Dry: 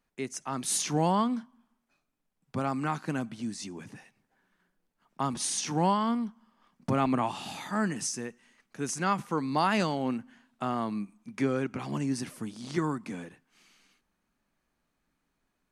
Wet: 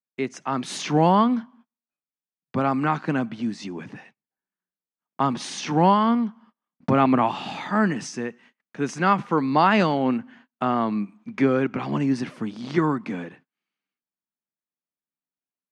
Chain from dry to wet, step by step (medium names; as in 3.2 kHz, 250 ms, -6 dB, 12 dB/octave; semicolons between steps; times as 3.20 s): band-pass 130–3300 Hz; gate -59 dBFS, range -31 dB; trim +8.5 dB